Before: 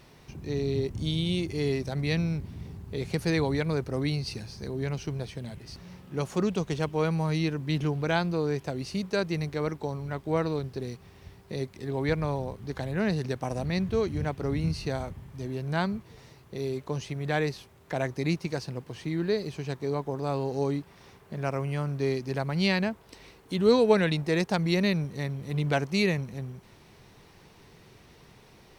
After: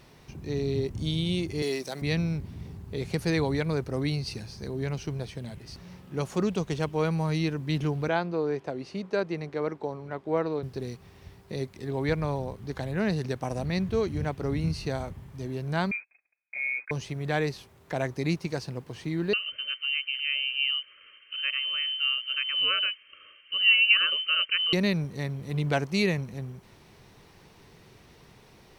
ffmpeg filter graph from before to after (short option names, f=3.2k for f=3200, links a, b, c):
-filter_complex "[0:a]asettb=1/sr,asplit=3[a][b][c];[a]atrim=end=1.624[d];[b]atrim=start=1.62:end=2.02,asetpts=PTS-STARTPTS,afade=t=in:d=0.004:c=qsin,afade=t=out:st=0.396:d=0.004:c=qsin,highpass=290,highshelf=f=4.1k:g=10[e];[c]atrim=start=2.016[f];[d][e]acrossfade=d=0.004:c1=hsin:c2=qsin[g];[g][f]acrossfade=d=0.004:c1=qsin:c2=hsin,asettb=1/sr,asplit=3[h][i][j];[h]atrim=end=8.084[k];[i]atrim=start=8.08:end=10.63,asetpts=PTS-STARTPTS,afade=t=in:d=0.004:c=qsin,afade=t=out:st=2.546:d=0.004:c=qsin,highpass=400,aemphasis=mode=reproduction:type=riaa[l];[j]atrim=start=10.626[m];[k][l]acrossfade=d=0.004:c1=hsin:c2=qsin[n];[n][m]acrossfade=d=0.004:c1=qsin:c2=hsin,asettb=1/sr,asplit=3[o][p][q];[o]atrim=end=15.914[r];[p]atrim=start=15.91:end=16.91,asetpts=PTS-STARTPTS,afade=t=in:d=0.004:c=qsin,afade=t=out:st=0.996:d=0.004:c=qsin,aemphasis=mode=reproduction:type=75fm,agate=range=-35dB:threshold=-47dB:ratio=16:release=100:detection=peak,lowpass=f=2.2k:t=q:w=0.5098,lowpass=f=2.2k:t=q:w=0.6013,lowpass=f=2.2k:t=q:w=0.9,lowpass=f=2.2k:t=q:w=2.563,afreqshift=-2600[s];[q]atrim=start=16.906[t];[r][s]acrossfade=d=0.004:c1=hsin:c2=qsin[u];[u][t]acrossfade=d=0.004:c1=qsin:c2=hsin,asettb=1/sr,asplit=3[v][w][x];[v]atrim=end=19.334[y];[w]atrim=start=19.33:end=24.73,asetpts=PTS-STARTPTS,afade=t=in:d=0.004:c=qsin,afade=t=out:st=5.396:d=0.004:c=qsin,lowpass=f=2.7k:t=q:w=0.5098,lowpass=f=2.7k:t=q:w=0.6013,lowpass=f=2.7k:t=q:w=0.9,lowpass=f=2.7k:t=q:w=2.563,afreqshift=-3200,asuperstop=centerf=820:order=20:qfactor=1.8,equalizer=f=190:t=o:w=1.6:g=-6.5[z];[x]atrim=start=24.726[aa];[y][z]acrossfade=d=0.004:c1=hsin:c2=qsin[ab];[ab][aa]acrossfade=d=0.004:c1=qsin:c2=hsin"